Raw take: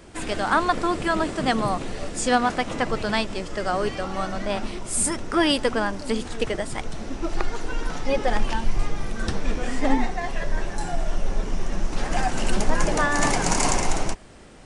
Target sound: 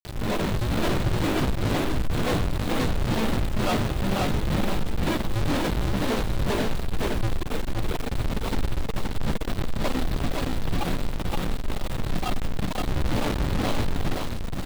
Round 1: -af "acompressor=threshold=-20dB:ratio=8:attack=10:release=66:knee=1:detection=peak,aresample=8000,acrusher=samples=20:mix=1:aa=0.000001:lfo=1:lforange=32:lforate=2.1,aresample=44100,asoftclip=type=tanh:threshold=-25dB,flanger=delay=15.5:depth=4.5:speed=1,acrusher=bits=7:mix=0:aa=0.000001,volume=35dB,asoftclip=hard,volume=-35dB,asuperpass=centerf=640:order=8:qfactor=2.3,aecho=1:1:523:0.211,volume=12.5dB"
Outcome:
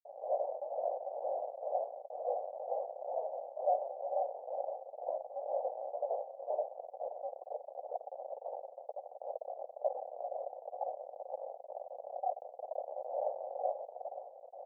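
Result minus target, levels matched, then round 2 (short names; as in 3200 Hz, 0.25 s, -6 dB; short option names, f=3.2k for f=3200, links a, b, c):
500 Hz band +7.0 dB; echo-to-direct -10 dB
-af "acompressor=threshold=-20dB:ratio=8:attack=10:release=66:knee=1:detection=peak,aresample=8000,acrusher=samples=20:mix=1:aa=0.000001:lfo=1:lforange=32:lforate=2.1,aresample=44100,asoftclip=type=tanh:threshold=-25dB,flanger=delay=15.5:depth=4.5:speed=1,acrusher=bits=7:mix=0:aa=0.000001,volume=35dB,asoftclip=hard,volume=-35dB,aecho=1:1:523:0.668,volume=12.5dB"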